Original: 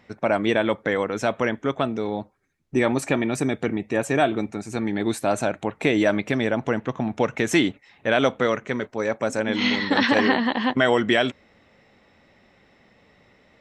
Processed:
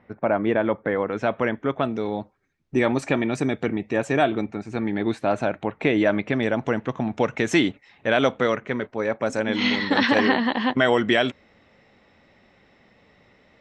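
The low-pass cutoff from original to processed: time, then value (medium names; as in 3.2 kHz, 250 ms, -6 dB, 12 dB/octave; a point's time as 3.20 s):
1.7 kHz
from 1.07 s 2.8 kHz
from 1.83 s 5.6 kHz
from 4.41 s 3.3 kHz
from 6.43 s 6.6 kHz
from 8.55 s 3.6 kHz
from 9.26 s 6.8 kHz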